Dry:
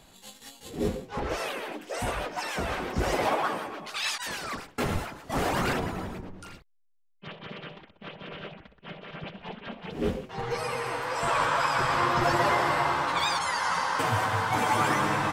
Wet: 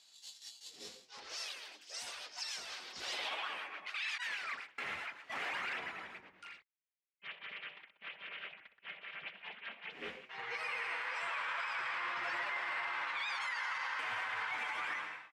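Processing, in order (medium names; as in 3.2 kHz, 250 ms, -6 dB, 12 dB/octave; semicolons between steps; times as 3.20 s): fade out at the end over 0.81 s; band-pass sweep 5 kHz -> 2.2 kHz, 2.79–3.76 s; peak limiter -32 dBFS, peak gain reduction 10 dB; trim +2 dB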